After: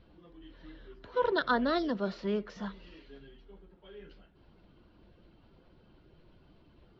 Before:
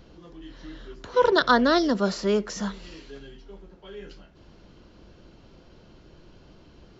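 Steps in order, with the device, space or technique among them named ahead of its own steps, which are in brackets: clip after many re-uploads (LPF 4000 Hz 24 dB/oct; bin magnitudes rounded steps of 15 dB); gain -8.5 dB

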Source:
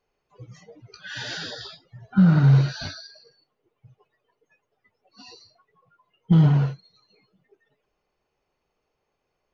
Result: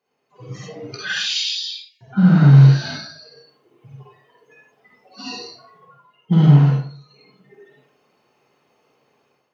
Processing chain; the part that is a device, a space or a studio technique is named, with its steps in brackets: 1.12–2.01 Chebyshev high-pass 2300 Hz, order 6; far laptop microphone (reverb RT60 0.50 s, pre-delay 45 ms, DRR -4.5 dB; HPF 130 Hz 24 dB/oct; AGC gain up to 10.5 dB); gain -1 dB

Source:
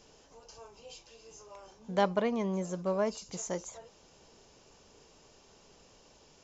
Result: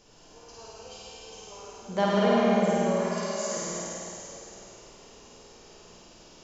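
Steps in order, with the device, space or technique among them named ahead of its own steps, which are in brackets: 2.77–3.57 HPF 1400 Hz 6 dB/oct; tunnel (flutter echo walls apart 8.8 m, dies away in 1.3 s; reverb RT60 3.3 s, pre-delay 54 ms, DRR -3 dB)

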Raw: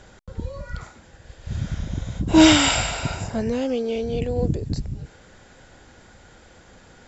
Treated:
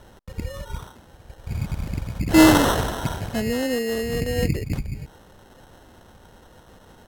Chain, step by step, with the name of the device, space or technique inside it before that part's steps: crushed at another speed (playback speed 1.25×; sample-and-hold 15×; playback speed 0.8×)

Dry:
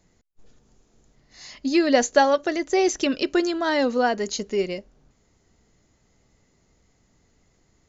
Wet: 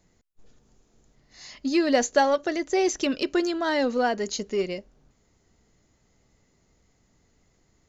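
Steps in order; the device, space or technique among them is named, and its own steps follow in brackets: parallel distortion (in parallel at -11 dB: hard clip -21 dBFS, distortion -8 dB); on the sum: gain -4 dB

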